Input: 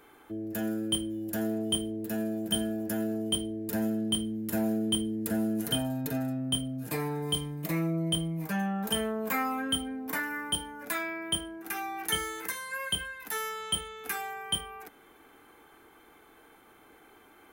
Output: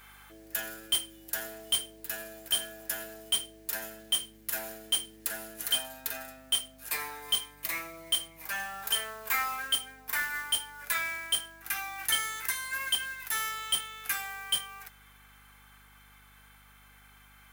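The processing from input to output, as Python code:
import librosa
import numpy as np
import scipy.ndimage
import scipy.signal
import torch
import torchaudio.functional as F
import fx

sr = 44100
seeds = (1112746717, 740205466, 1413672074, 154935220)

p1 = scipy.signal.sosfilt(scipy.signal.butter(2, 1400.0, 'highpass', fs=sr, output='sos'), x)
p2 = fx.rider(p1, sr, range_db=10, speed_s=2.0)
p3 = p1 + (p2 * librosa.db_to_amplitude(1.5))
p4 = fx.mod_noise(p3, sr, seeds[0], snr_db=12)
p5 = np.clip(10.0 ** (17.5 / 20.0) * p4, -1.0, 1.0) / 10.0 ** (17.5 / 20.0)
p6 = fx.add_hum(p5, sr, base_hz=50, snr_db=26)
y = p6 * librosa.db_to_amplitude(-2.5)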